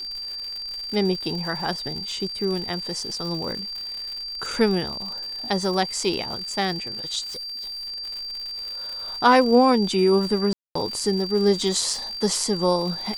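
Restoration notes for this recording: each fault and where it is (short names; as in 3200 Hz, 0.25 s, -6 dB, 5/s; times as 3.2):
crackle 150/s -31 dBFS
tone 4700 Hz -30 dBFS
7.23–7.88 clipped -31 dBFS
10.53–10.75 gap 0.224 s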